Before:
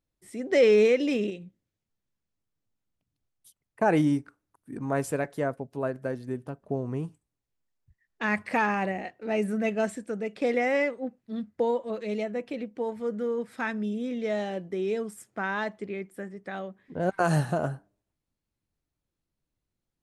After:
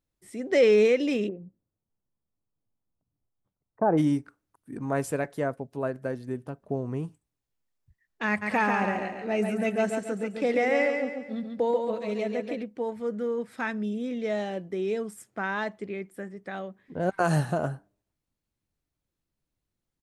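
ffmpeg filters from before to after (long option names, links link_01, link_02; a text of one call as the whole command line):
ffmpeg -i in.wav -filter_complex "[0:a]asplit=3[link_01][link_02][link_03];[link_01]afade=type=out:start_time=1.27:duration=0.02[link_04];[link_02]lowpass=frequency=1200:width=0.5412,lowpass=frequency=1200:width=1.3066,afade=type=in:start_time=1.27:duration=0.02,afade=type=out:start_time=3.97:duration=0.02[link_05];[link_03]afade=type=in:start_time=3.97:duration=0.02[link_06];[link_04][link_05][link_06]amix=inputs=3:normalize=0,asplit=3[link_07][link_08][link_09];[link_07]afade=type=out:start_time=8.41:duration=0.02[link_10];[link_08]aecho=1:1:139|278|417|556|695:0.562|0.236|0.0992|0.0417|0.0175,afade=type=in:start_time=8.41:duration=0.02,afade=type=out:start_time=12.62:duration=0.02[link_11];[link_09]afade=type=in:start_time=12.62:duration=0.02[link_12];[link_10][link_11][link_12]amix=inputs=3:normalize=0" out.wav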